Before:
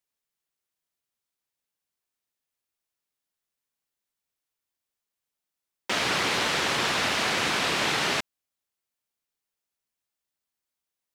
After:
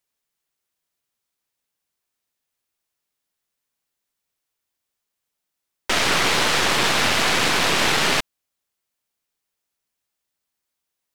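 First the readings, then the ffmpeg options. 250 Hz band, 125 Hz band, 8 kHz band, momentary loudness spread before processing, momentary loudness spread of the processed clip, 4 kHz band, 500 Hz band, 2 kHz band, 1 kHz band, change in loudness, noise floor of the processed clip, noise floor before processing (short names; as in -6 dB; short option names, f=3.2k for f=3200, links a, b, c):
+6.0 dB, +7.0 dB, +8.0 dB, 4 LU, 4 LU, +6.5 dB, +6.0 dB, +6.0 dB, +6.0 dB, +6.5 dB, -82 dBFS, under -85 dBFS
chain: -af "aeval=exprs='0.224*(cos(1*acos(clip(val(0)/0.224,-1,1)))-cos(1*PI/2))+0.0355*(cos(6*acos(clip(val(0)/0.224,-1,1)))-cos(6*PI/2))':c=same,volume=5.5dB"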